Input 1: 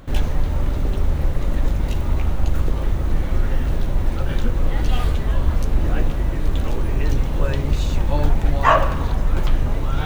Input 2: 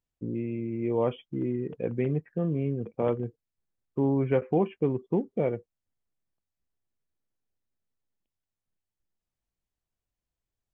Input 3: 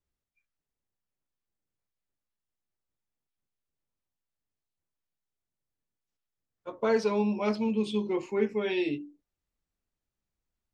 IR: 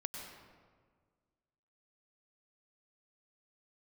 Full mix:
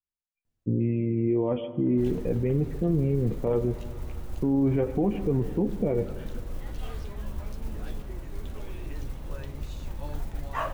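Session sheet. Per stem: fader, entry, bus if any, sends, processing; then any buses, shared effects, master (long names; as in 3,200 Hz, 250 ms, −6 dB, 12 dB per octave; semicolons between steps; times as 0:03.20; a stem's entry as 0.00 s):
−16.5 dB, 1.90 s, no send, noise that follows the level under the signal 27 dB
+2.5 dB, 0.45 s, send −11.5 dB, low-shelf EQ 490 Hz +10.5 dB; flanger 0.41 Hz, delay 8.6 ms, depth 3.8 ms, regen +43%
−16.0 dB, 0.00 s, no send, brickwall limiter −25 dBFS, peak gain reduction 10.5 dB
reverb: on, RT60 1.7 s, pre-delay 90 ms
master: brickwall limiter −16.5 dBFS, peak gain reduction 10 dB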